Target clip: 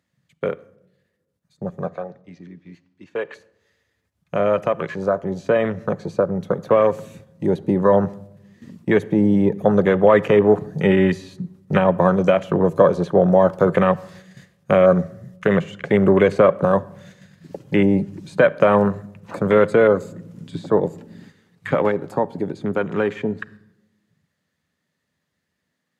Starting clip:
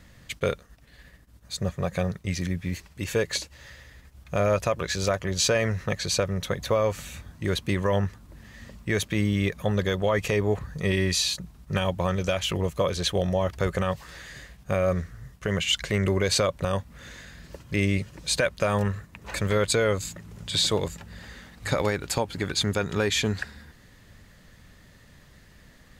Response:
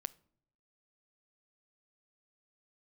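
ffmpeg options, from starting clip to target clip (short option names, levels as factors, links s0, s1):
-filter_complex "[0:a]acrossover=split=270|1600[s0][s1][s2];[s2]acompressor=threshold=0.00794:ratio=6[s3];[s0][s1][s3]amix=inputs=3:normalize=0,asettb=1/sr,asplit=3[s4][s5][s6];[s4]atrim=end=1.874[s7];[s5]atrim=start=1.87:end=3.34,asetpts=PTS-STARTPTS,afade=t=in:d=0.004:c=qsin,afade=t=out:st=1.466:d=0.004:c=qsin,acrossover=split=440 5500:gain=0.2 1 0.0794[s8][s9][s10];[s8][s9][s10]amix=inputs=3:normalize=0[s11];[s6]atrim=start=3.336[s12];[s7][s11]acrossfade=d=0.004:c1=hsin:c2=qsin[s13];[s13][s12]acrossfade=d=0.004:c1=qsin:c2=hsin,afwtdn=0.0178,highpass=f=150:w=0.5412,highpass=f=150:w=1.3066,dynaudnorm=f=990:g=13:m=3.16,agate=range=0.447:threshold=0.00398:ratio=16:detection=peak,asplit=2[s14][s15];[1:a]atrim=start_sample=2205,asetrate=26019,aresample=44100[s16];[s15][s16]afir=irnorm=-1:irlink=0,volume=3.55[s17];[s14][s17]amix=inputs=2:normalize=0,volume=0.299"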